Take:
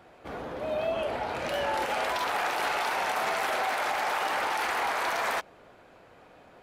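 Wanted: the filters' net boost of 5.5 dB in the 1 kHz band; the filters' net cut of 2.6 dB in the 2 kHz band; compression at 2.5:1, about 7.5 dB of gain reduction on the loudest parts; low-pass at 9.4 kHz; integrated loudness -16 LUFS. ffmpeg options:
-af "lowpass=9400,equalizer=f=1000:t=o:g=8.5,equalizer=f=2000:t=o:g=-7,acompressor=threshold=0.0224:ratio=2.5,volume=7.08"

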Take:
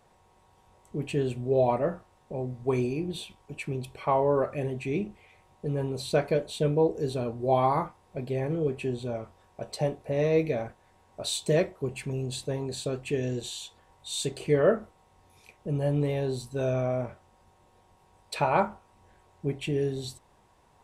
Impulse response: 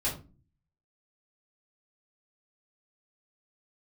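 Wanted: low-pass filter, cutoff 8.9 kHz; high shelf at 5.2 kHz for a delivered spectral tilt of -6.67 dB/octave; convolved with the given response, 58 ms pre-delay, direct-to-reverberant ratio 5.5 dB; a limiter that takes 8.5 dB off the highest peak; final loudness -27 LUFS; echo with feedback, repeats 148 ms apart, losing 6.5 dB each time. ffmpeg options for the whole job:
-filter_complex "[0:a]lowpass=8900,highshelf=f=5200:g=-7.5,alimiter=limit=0.112:level=0:latency=1,aecho=1:1:148|296|444|592|740|888:0.473|0.222|0.105|0.0491|0.0231|0.0109,asplit=2[s0][s1];[1:a]atrim=start_sample=2205,adelay=58[s2];[s1][s2]afir=irnorm=-1:irlink=0,volume=0.251[s3];[s0][s3]amix=inputs=2:normalize=0,volume=1.26"

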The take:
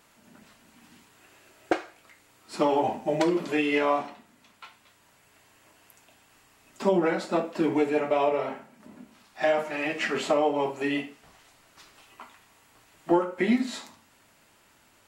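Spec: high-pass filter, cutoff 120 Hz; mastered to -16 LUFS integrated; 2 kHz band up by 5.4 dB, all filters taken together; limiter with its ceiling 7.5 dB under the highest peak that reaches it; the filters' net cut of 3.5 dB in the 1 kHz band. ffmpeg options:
-af "highpass=120,equalizer=f=1000:t=o:g=-6.5,equalizer=f=2000:t=o:g=8,volume=4.22,alimiter=limit=0.562:level=0:latency=1"

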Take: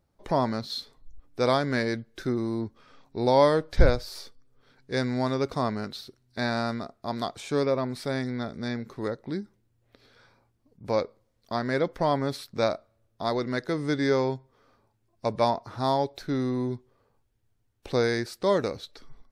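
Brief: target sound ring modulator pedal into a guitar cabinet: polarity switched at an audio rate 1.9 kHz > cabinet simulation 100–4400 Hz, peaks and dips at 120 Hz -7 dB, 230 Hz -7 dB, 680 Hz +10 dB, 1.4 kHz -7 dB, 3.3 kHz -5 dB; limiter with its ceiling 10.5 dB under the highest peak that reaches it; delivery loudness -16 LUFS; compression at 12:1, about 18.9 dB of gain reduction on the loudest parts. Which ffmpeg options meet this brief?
-af "acompressor=threshold=0.0316:ratio=12,alimiter=level_in=1.88:limit=0.0631:level=0:latency=1,volume=0.531,aeval=exprs='val(0)*sgn(sin(2*PI*1900*n/s))':c=same,highpass=100,equalizer=f=120:t=q:w=4:g=-7,equalizer=f=230:t=q:w=4:g=-7,equalizer=f=680:t=q:w=4:g=10,equalizer=f=1400:t=q:w=4:g=-7,equalizer=f=3300:t=q:w=4:g=-5,lowpass=f=4400:w=0.5412,lowpass=f=4400:w=1.3066,volume=16.8"

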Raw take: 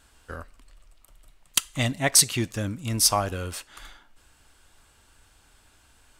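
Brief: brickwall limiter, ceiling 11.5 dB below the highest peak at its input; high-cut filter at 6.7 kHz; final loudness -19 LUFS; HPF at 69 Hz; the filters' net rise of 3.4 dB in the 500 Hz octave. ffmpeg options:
-af "highpass=69,lowpass=6700,equalizer=f=500:t=o:g=4.5,volume=3.98,alimiter=limit=0.531:level=0:latency=1"

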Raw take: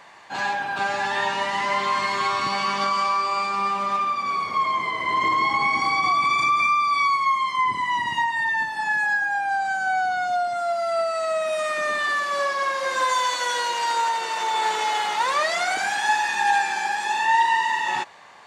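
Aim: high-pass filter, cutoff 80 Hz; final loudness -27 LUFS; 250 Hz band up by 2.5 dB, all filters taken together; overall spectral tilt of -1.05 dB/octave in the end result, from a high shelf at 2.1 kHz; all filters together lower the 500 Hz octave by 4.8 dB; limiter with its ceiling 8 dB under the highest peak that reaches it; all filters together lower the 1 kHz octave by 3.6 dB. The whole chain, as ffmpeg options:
-af "highpass=80,equalizer=f=250:t=o:g=5.5,equalizer=f=500:t=o:g=-6.5,equalizer=f=1000:t=o:g=-3.5,highshelf=f=2100:g=3,volume=0.944,alimiter=limit=0.1:level=0:latency=1"

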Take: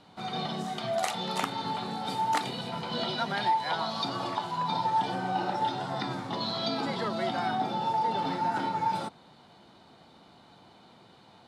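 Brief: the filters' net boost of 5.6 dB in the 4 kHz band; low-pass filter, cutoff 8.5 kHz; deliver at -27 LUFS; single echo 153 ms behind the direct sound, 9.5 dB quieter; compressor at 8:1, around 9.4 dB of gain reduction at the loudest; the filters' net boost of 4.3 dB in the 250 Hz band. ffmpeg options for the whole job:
-af "lowpass=8500,equalizer=f=250:t=o:g=5.5,equalizer=f=4000:t=o:g=6.5,acompressor=threshold=0.0251:ratio=8,aecho=1:1:153:0.335,volume=2.37"

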